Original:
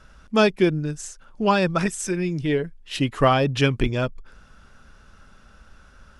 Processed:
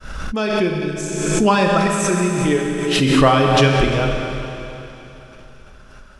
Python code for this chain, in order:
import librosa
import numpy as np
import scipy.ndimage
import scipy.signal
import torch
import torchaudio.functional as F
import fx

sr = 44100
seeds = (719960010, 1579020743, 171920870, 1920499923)

y = fx.fade_in_head(x, sr, length_s=1.15)
y = fx.dereverb_blind(y, sr, rt60_s=0.73)
y = fx.rev_schroeder(y, sr, rt60_s=3.2, comb_ms=30, drr_db=0.5)
y = fx.pre_swell(y, sr, db_per_s=33.0)
y = F.gain(torch.from_numpy(y), 3.5).numpy()